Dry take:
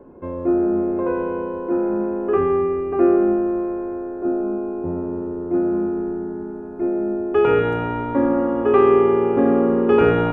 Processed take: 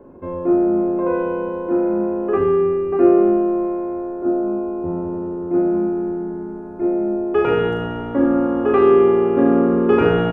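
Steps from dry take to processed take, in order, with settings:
ambience of single reflections 40 ms −4.5 dB, 73 ms −9.5 dB

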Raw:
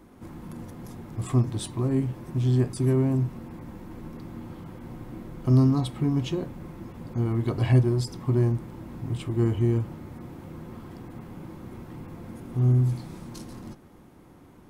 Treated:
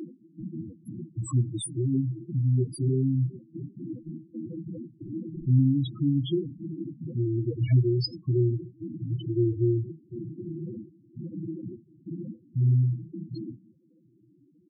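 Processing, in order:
in parallel at +1 dB: downward compressor, threshold −33 dBFS, peak gain reduction 18 dB
on the sum: parametric band 1,100 Hz −3.5 dB 0.71 octaves
mains-hum notches 50/100/150 Hz
on a send: feedback echo with a high-pass in the loop 746 ms, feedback 69%, high-pass 260 Hz, level −16 dB
on the sum: upward compression, threshold −24 dBFS
comb filter 6.2 ms, depth 30%
noise gate with hold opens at −21 dBFS
spectral tilt +2 dB per octave
spectral peaks only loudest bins 4
level +2.5 dB

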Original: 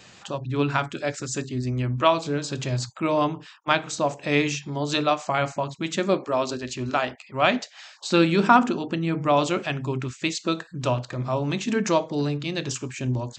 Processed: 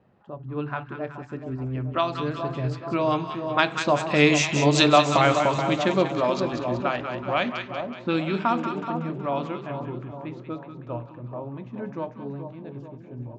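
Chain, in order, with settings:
source passing by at 0:04.77, 11 m/s, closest 7.2 metres
low-pass that shuts in the quiet parts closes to 770 Hz, open at −24.5 dBFS
echo with a time of its own for lows and highs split 1,000 Hz, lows 428 ms, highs 187 ms, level −8 dB
in parallel at +0.5 dB: downward compressor, threshold −33 dBFS, peak gain reduction 15 dB
on the sum: level +4 dB

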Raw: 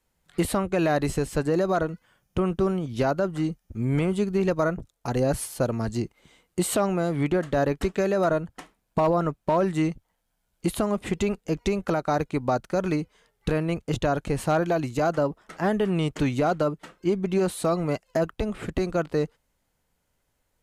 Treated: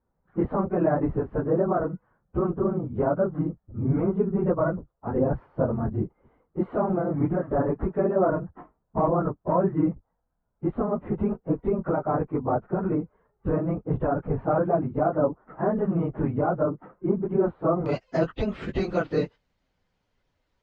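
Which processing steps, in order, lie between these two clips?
random phases in long frames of 50 ms
low-pass filter 1,300 Hz 24 dB per octave, from 0:17.86 5,100 Hz

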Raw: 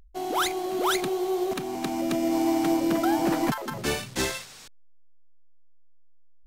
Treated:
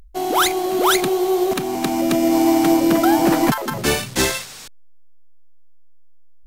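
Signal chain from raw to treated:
parametric band 14,000 Hz +4 dB 1 octave
level +8.5 dB

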